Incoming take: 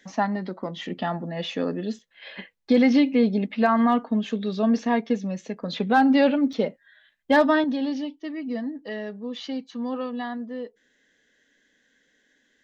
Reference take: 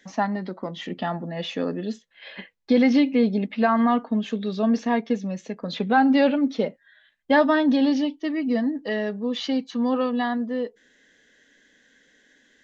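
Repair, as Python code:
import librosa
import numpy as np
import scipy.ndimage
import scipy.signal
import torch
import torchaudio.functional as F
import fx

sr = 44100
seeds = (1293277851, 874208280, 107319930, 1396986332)

y = fx.fix_declip(x, sr, threshold_db=-10.0)
y = fx.fix_interpolate(y, sr, at_s=(1.99, 6.53), length_ms=3.5)
y = fx.gain(y, sr, db=fx.steps((0.0, 0.0), (7.64, 6.5)))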